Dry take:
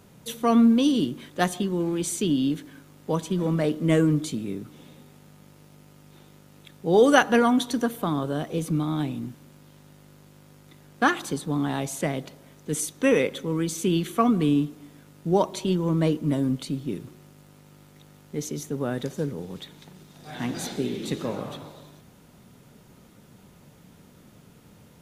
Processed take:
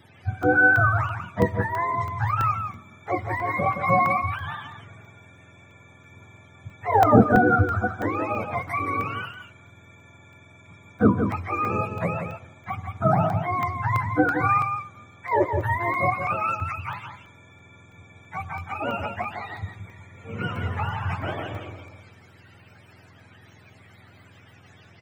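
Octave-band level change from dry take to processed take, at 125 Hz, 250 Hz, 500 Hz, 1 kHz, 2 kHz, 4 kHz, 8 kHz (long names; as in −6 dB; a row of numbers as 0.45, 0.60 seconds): +3.0 dB, −4.5 dB, −1.0 dB, +7.5 dB, +8.0 dB, −10.0 dB, below −15 dB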